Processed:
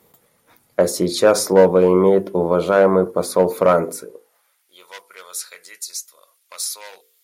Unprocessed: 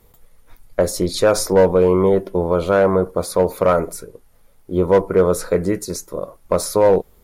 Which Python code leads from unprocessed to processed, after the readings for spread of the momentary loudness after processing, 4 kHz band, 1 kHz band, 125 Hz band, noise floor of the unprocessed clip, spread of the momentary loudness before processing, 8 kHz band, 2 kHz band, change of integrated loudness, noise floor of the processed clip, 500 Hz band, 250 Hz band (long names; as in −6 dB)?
18 LU, +1.0 dB, −0.5 dB, −3.5 dB, −53 dBFS, 13 LU, +1.0 dB, 0.0 dB, +1.0 dB, −64 dBFS, −1.0 dB, −1.0 dB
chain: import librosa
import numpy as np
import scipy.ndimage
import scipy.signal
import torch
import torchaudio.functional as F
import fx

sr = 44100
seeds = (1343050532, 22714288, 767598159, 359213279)

y = fx.hum_notches(x, sr, base_hz=50, count=10)
y = fx.filter_sweep_highpass(y, sr, from_hz=180.0, to_hz=3100.0, start_s=3.95, end_s=4.75, q=1.0)
y = y * 10.0 ** (1.0 / 20.0)